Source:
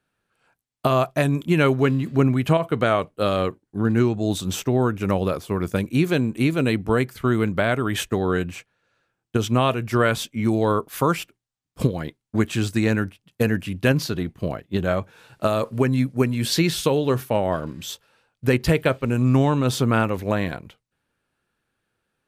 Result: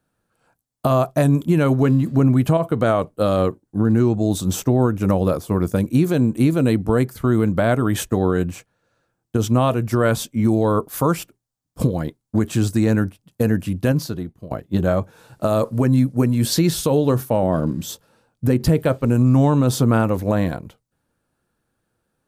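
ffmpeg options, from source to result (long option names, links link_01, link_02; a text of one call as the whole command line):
ffmpeg -i in.wav -filter_complex "[0:a]asettb=1/sr,asplit=3[link_01][link_02][link_03];[link_01]atrim=end=17.434[link_04];[link_02]atrim=start=17.43:end=18.79,asetpts=PTS-STARTPTS,afade=type=in:duration=0.004:curve=qsin,afade=type=out:start_time=1.356:duration=0.004:curve=qsin,equalizer=frequency=210:width_type=o:width=1.7:gain=6.5[link_05];[link_03]atrim=start=18.786[link_06];[link_04][link_05]acrossfade=duration=0.004:curve1=hsin:curve2=qsin[link_07];[link_07][link_06]acrossfade=duration=0.004:curve1=qsin:curve2=hsin,asplit=2[link_08][link_09];[link_08]atrim=end=14.51,asetpts=PTS-STARTPTS,afade=type=out:start_time=13.69:duration=0.82:silence=0.1[link_10];[link_09]atrim=start=14.51,asetpts=PTS-STARTPTS,afade=type=in:duration=0.004:curve=hsin:silence=0.1[link_11];[link_10][link_11]concat=n=2:v=0:a=1,equalizer=frequency=2500:width_type=o:width=1.8:gain=-11,bandreject=frequency=400:width=12,alimiter=limit=-14dB:level=0:latency=1:release=68,volume=6dB" out.wav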